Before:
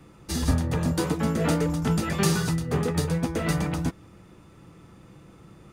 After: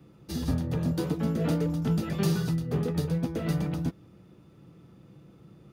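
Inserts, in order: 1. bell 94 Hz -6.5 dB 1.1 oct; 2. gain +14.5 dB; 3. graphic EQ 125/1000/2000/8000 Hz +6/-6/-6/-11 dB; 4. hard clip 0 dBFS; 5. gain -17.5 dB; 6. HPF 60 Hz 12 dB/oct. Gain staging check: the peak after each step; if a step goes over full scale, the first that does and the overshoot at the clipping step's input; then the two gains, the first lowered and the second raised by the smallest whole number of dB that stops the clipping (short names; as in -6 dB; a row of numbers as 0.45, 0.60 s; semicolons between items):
-10.5, +4.0, +3.5, 0.0, -17.5, -15.0 dBFS; step 2, 3.5 dB; step 2 +10.5 dB, step 5 -13.5 dB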